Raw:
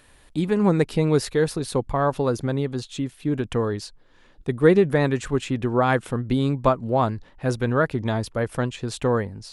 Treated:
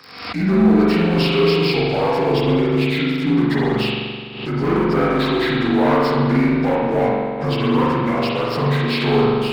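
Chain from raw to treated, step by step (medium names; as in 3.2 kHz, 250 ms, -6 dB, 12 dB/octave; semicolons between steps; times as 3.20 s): frequency axis rescaled in octaves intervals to 81%; high-pass 100 Hz 24 dB/octave; tilt shelf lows -5 dB, about 1.4 kHz; waveshaping leveller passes 3; peak limiter -15.5 dBFS, peak gain reduction 6 dB; spring tank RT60 1.8 s, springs 42 ms, chirp 30 ms, DRR -5.5 dB; swell ahead of each attack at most 68 dB/s; trim -2 dB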